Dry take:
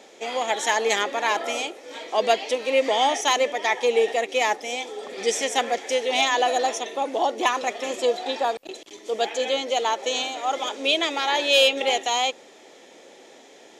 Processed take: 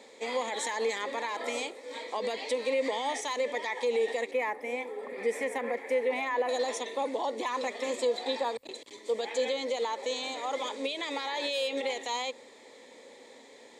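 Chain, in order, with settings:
0:04.31–0:06.49: flat-topped bell 5,200 Hz −15.5 dB
brickwall limiter −18.5 dBFS, peak gain reduction 10.5 dB
EQ curve with evenly spaced ripples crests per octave 0.98, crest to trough 9 dB
level −5 dB

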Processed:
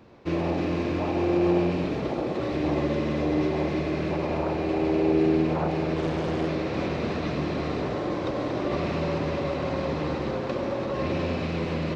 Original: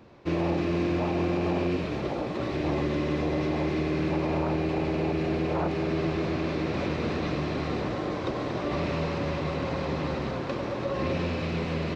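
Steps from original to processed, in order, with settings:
on a send: delay with a band-pass on its return 63 ms, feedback 77%, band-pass 420 Hz, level −5 dB
0:05.96–0:06.48: on the sum: highs frequency-modulated by the lows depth 0.49 ms

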